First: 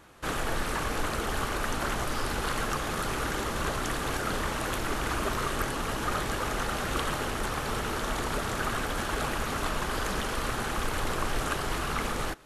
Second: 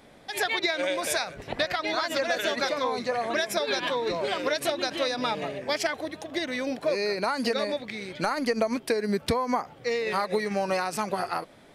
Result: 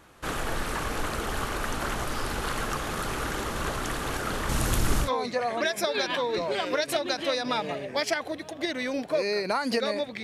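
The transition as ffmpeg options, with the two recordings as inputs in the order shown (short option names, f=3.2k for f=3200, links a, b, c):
-filter_complex "[0:a]asettb=1/sr,asplit=3[a][b][c];[a]atrim=end=4.494[d];[b]atrim=start=4.49:end=5.1,asetpts=PTS-STARTPTS,afade=t=in:d=0.004:c=qsin,afade=t=out:st=0.606:d=0.004:c=qsin,bass=f=250:g=11,treble=f=4k:g=8[e];[c]atrim=start=5.096[f];[d][e]acrossfade=d=0.004:c1=hsin:c2=qsin[g];[g][f]acrossfade=d=0.004:c1=qsin:c2=hsin,apad=whole_dur=10.23,atrim=end=10.23,atrim=end=5.1,asetpts=PTS-STARTPTS[h];[1:a]atrim=start=2.73:end=7.96,asetpts=PTS-STARTPTS[i];[h][i]acrossfade=d=0.1:c1=tri:c2=tri"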